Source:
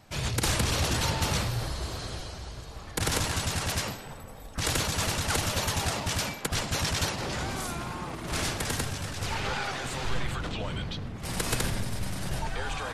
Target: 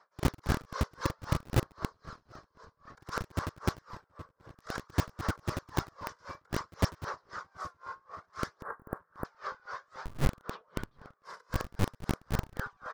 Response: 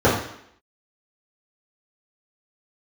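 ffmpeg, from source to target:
-filter_complex "[0:a]firequalizer=gain_entry='entry(110,0);entry(170,1);entry(270,-19);entry(420,-2);entry(770,-8);entry(1100,6);entry(1600,-1);entry(2600,-22);entry(5200,-10);entry(8900,-29)':delay=0.05:min_phase=1,aphaser=in_gain=1:out_gain=1:delay=2:decay=0.39:speed=0.57:type=sinusoidal,acrossover=split=330|1700[link_01][link_02][link_03];[link_01]acrusher=bits=3:mix=0:aa=0.000001[link_04];[link_02]flanger=delay=17:depth=5.9:speed=0.24[link_05];[link_04][link_05][link_03]amix=inputs=3:normalize=0,asettb=1/sr,asplit=3[link_06][link_07][link_08];[link_06]atrim=end=8.624[link_09];[link_07]atrim=start=8.62:end=9.25,asetpts=PTS-STARTPTS,afade=type=in:duration=0.004:curve=qsin,afade=type=out:start_time=0.626:duration=0.004:curve=qsin,asuperstop=centerf=4400:order=8:qfactor=0.51[link_10];[link_08]atrim=start=9.246[link_11];[link_09][link_10]acrossfade=duration=0.004:curve1=hsin:curve2=qsin[link_12];[link_12][link_11]acrossfade=duration=0.004:curve1=qsin:curve2=hsin,asplit=2[link_13][link_14];[link_14]adelay=725,lowpass=frequency=3000:poles=1,volume=-20dB,asplit=2[link_15][link_16];[link_16]adelay=725,lowpass=frequency=3000:poles=1,volume=0.49,asplit=2[link_17][link_18];[link_18]adelay=725,lowpass=frequency=3000:poles=1,volume=0.49,asplit=2[link_19][link_20];[link_20]adelay=725,lowpass=frequency=3000:poles=1,volume=0.49[link_21];[link_15][link_17][link_19][link_21]amix=inputs=4:normalize=0[link_22];[link_13][link_22]amix=inputs=2:normalize=0,aeval=exprs='val(0)*pow(10,-30*(0.5-0.5*cos(2*PI*3.8*n/s))/20)':channel_layout=same"

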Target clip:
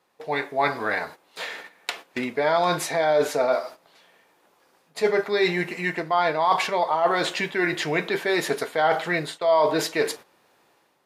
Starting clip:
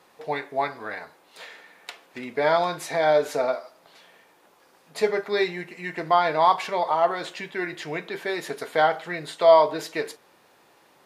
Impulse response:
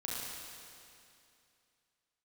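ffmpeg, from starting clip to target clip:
-af "areverse,acompressor=threshold=-29dB:ratio=4,areverse,agate=range=-13dB:threshold=-48dB:ratio=16:detection=peak,dynaudnorm=framelen=100:gausssize=7:maxgain=7.5dB,volume=2dB"

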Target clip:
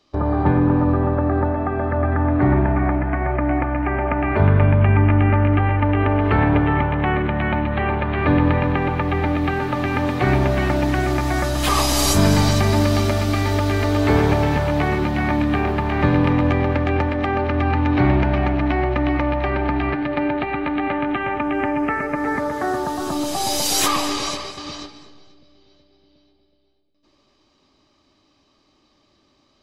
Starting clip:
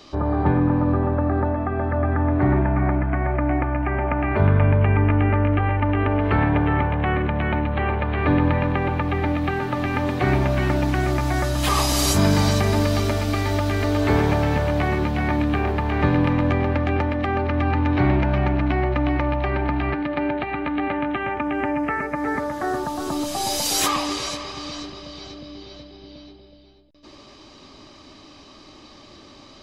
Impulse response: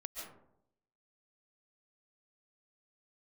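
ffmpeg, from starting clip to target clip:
-filter_complex "[0:a]agate=range=-18dB:threshold=-32dB:ratio=16:detection=peak,asplit=2[link_01][link_02];[1:a]atrim=start_sample=2205,asetrate=28665,aresample=44100[link_03];[link_02][link_03]afir=irnorm=-1:irlink=0,volume=-8dB[link_04];[link_01][link_04]amix=inputs=2:normalize=0"

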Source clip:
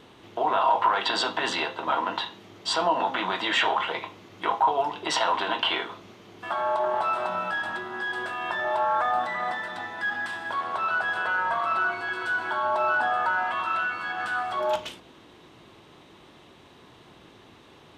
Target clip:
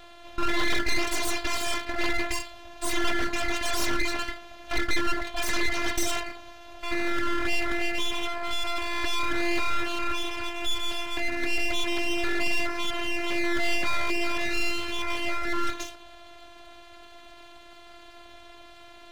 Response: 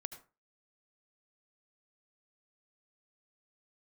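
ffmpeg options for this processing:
-filter_complex "[0:a]afftfilt=real='hypot(re,im)*cos(PI*b)':imag='0':win_size=512:overlap=0.75,aeval=exprs='abs(val(0))':channel_layout=same,atempo=0.94,asplit=2[link_01][link_02];[link_02]aeval=exprs='0.299*sin(PI/2*3.55*val(0)/0.299)':channel_layout=same,volume=-3.5dB[link_03];[link_01][link_03]amix=inputs=2:normalize=0,volume=-6dB"

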